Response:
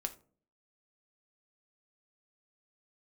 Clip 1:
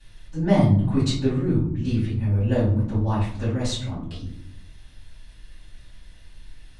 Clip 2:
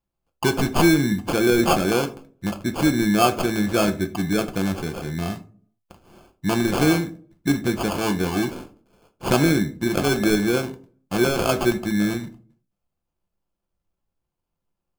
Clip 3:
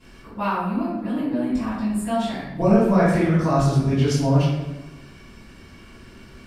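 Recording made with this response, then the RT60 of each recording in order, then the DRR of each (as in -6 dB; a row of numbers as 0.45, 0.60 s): 2; 0.65, 0.45, 1.1 s; -13.0, 6.0, -17.5 dB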